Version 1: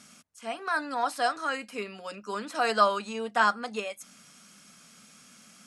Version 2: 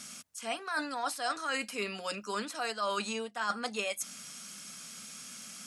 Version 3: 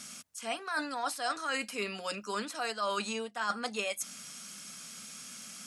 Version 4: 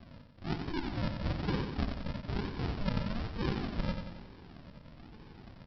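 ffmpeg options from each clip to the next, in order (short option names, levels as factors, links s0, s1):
-af "highshelf=f=2600:g=8.5,areverse,acompressor=threshold=0.0251:ratio=12,areverse,volume=1.26"
-af anull
-af "aresample=11025,acrusher=samples=23:mix=1:aa=0.000001:lfo=1:lforange=13.8:lforate=1.1,aresample=44100,aecho=1:1:91|182|273|364|455|546|637:0.473|0.26|0.143|0.0787|0.0433|0.0238|0.0131"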